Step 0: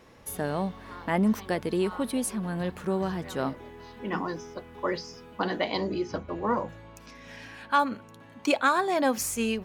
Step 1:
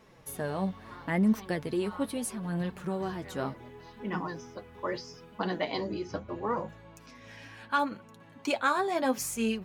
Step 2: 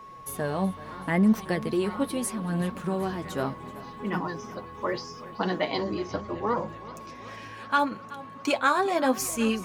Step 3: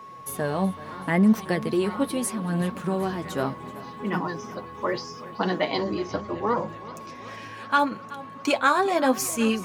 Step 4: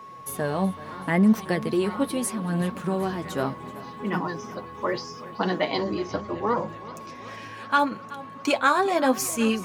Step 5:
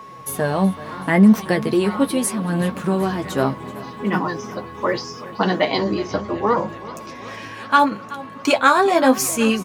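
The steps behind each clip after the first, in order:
bell 130 Hz +6 dB 0.43 oct; flange 0.74 Hz, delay 4.4 ms, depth 6.4 ms, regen +37%
whine 1100 Hz -47 dBFS; warbling echo 0.378 s, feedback 70%, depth 93 cents, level -18 dB; gain +4 dB
HPF 86 Hz; gain +2.5 dB
nothing audible
doubler 15 ms -10.5 dB; gain +6 dB

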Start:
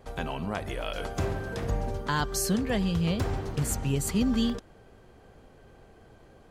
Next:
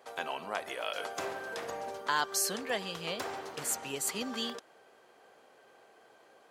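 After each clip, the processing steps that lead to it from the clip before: HPF 560 Hz 12 dB/oct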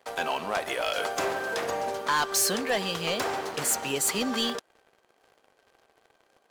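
sample leveller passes 3; gain -2 dB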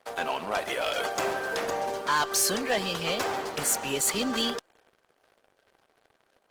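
Opus 16 kbps 48000 Hz

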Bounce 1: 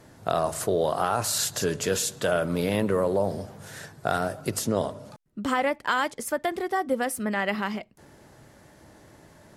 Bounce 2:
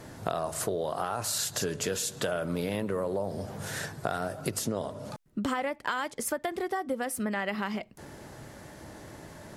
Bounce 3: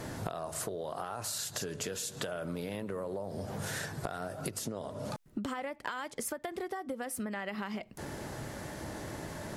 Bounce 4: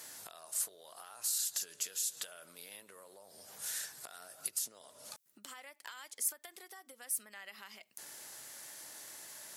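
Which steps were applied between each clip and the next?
compressor 5:1, threshold -35 dBFS, peak gain reduction 14 dB; gain +6 dB
compressor 10:1, threshold -39 dBFS, peak gain reduction 14.5 dB; gain +5 dB
differentiator; gain +3 dB

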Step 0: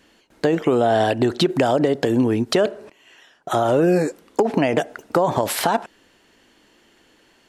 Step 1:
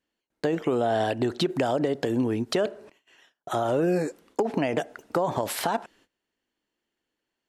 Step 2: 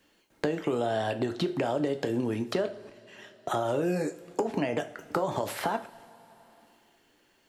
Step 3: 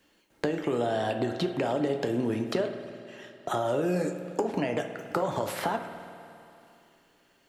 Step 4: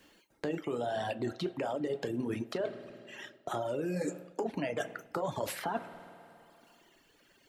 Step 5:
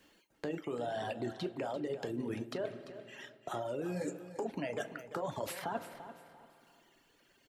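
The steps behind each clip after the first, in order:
gate -50 dBFS, range -20 dB; gain -7 dB
two-slope reverb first 0.32 s, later 1.7 s, from -20 dB, DRR 6.5 dB; three-band squash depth 70%; gain -4.5 dB
spring tank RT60 2.5 s, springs 50 ms, chirp 55 ms, DRR 8.5 dB
reverb removal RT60 1.7 s; reverse; compressor, threshold -36 dBFS, peak gain reduction 13 dB; reverse; gain +4.5 dB
feedback echo 0.343 s, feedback 28%, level -12.5 dB; gain -3.5 dB

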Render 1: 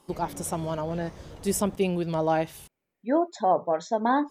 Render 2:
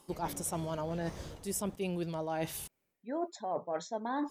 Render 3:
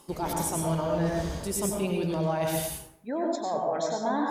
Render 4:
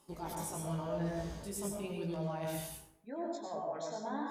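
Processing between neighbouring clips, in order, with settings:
high shelf 4600 Hz +6 dB; reverse; compressor 10:1, threshold -32 dBFS, peak gain reduction 15.5 dB; reverse
in parallel at +1 dB: limiter -31.5 dBFS, peak gain reduction 9.5 dB; on the sum: plate-style reverb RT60 0.7 s, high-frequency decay 0.6×, pre-delay 85 ms, DRR -0.5 dB
chorus 0.91 Hz, delay 17.5 ms, depth 2.3 ms; gain -8 dB

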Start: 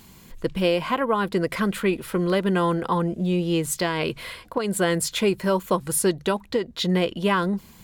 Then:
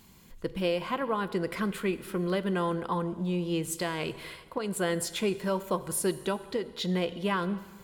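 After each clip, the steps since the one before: plate-style reverb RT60 1.6 s, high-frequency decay 0.9×, DRR 13.5 dB; gain -7.5 dB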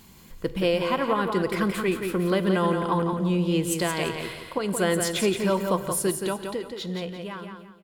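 ending faded out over 2.27 s; on a send: feedback echo 0.173 s, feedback 32%, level -6 dB; on the sum: gain +5 dB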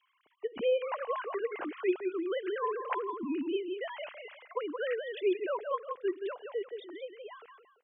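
sine-wave speech; gain -9 dB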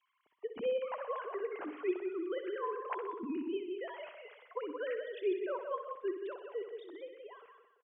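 high shelf 3400 Hz -8.5 dB; feedback echo 62 ms, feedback 57%, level -9.5 dB; gain -4.5 dB

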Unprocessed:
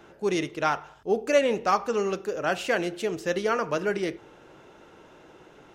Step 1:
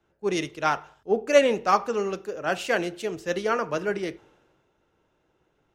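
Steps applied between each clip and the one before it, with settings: three-band expander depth 70%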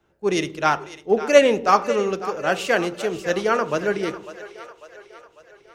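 split-band echo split 430 Hz, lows 0.112 s, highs 0.548 s, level -14 dB; gain +4.5 dB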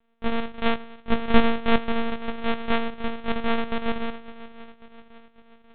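sample sorter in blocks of 256 samples; monotone LPC vocoder at 8 kHz 230 Hz; gain -1.5 dB

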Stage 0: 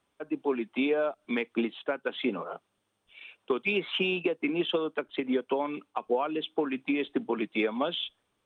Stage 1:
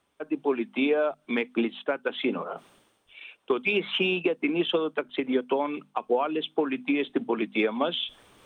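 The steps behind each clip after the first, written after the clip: notches 50/100/150/200/250 Hz; reverse; upward compressor, threshold -44 dBFS; reverse; gain +3 dB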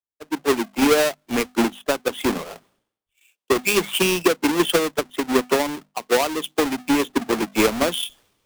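half-waves squared off; three-band expander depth 100%; gain +2 dB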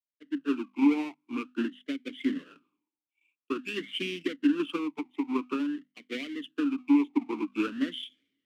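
vowel sweep i-u 0.49 Hz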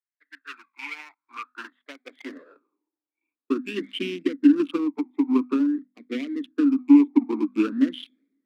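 Wiener smoothing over 15 samples; high-pass sweep 1800 Hz -> 240 Hz, 0.93–3.45; gain +2 dB

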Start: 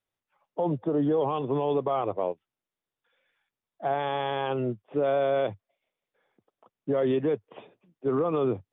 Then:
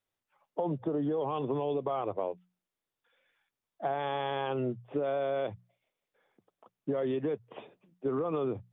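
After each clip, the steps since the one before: spectral gain 1.63–1.85, 750–2100 Hz -6 dB; notches 60/120/180 Hz; compressor, threshold -28 dBFS, peak gain reduction 7 dB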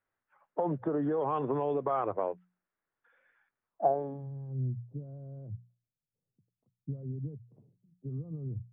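low-pass sweep 1600 Hz -> 130 Hz, 3.65–4.3

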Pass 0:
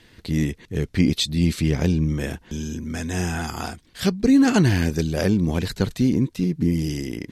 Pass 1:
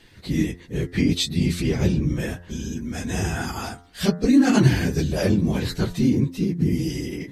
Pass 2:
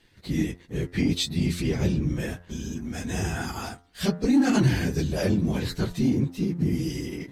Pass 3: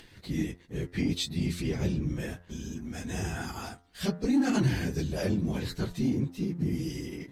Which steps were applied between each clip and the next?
phase scrambler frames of 50 ms; de-hum 87.35 Hz, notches 23
sample leveller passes 1; gain -7 dB
upward compressor, threshold -38 dBFS; gain -5 dB

